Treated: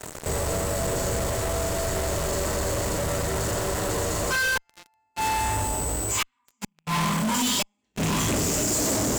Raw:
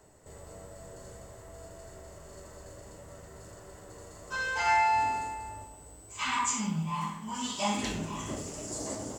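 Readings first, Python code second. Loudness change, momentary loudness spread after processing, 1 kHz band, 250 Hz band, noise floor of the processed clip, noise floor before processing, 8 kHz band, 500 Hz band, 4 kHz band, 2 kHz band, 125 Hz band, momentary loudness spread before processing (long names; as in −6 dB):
+5.5 dB, 6 LU, +2.0 dB, +9.0 dB, −73 dBFS, −51 dBFS, +12.5 dB, +14.0 dB, +10.0 dB, +6.5 dB, +12.5 dB, 22 LU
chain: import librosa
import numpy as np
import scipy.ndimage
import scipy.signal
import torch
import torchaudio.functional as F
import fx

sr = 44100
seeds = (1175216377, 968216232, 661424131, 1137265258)

p1 = fx.rattle_buzz(x, sr, strikes_db=-33.0, level_db=-32.0)
p2 = fx.gate_flip(p1, sr, shuts_db=-23.0, range_db=-36)
p3 = fx.dynamic_eq(p2, sr, hz=840.0, q=0.78, threshold_db=-49.0, ratio=4.0, max_db=-5)
p4 = fx.fuzz(p3, sr, gain_db=61.0, gate_db=-55.0)
p5 = p3 + (p4 * librosa.db_to_amplitude(-3.5))
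y = p5 * librosa.db_to_amplitude(-7.0)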